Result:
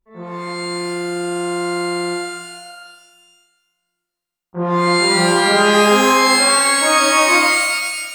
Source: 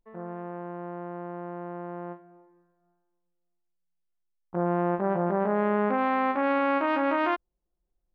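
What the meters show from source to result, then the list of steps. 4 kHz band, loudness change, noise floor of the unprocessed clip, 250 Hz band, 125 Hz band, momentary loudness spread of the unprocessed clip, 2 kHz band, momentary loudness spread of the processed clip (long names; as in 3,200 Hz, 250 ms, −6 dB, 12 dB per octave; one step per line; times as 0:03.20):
can't be measured, +13.5 dB, −79 dBFS, +9.0 dB, +9.0 dB, 13 LU, +18.5 dB, 16 LU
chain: reverb with rising layers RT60 1.3 s, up +12 semitones, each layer −2 dB, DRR −11.5 dB
level −4 dB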